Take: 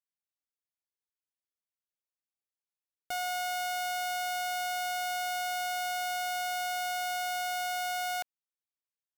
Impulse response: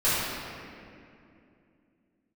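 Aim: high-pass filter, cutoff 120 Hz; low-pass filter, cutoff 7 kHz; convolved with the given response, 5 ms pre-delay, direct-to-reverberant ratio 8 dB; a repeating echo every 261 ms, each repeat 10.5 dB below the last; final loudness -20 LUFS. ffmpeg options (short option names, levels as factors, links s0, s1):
-filter_complex "[0:a]highpass=120,lowpass=7000,aecho=1:1:261|522|783:0.299|0.0896|0.0269,asplit=2[s0][s1];[1:a]atrim=start_sample=2205,adelay=5[s2];[s1][s2]afir=irnorm=-1:irlink=0,volume=0.0668[s3];[s0][s3]amix=inputs=2:normalize=0,volume=3.55"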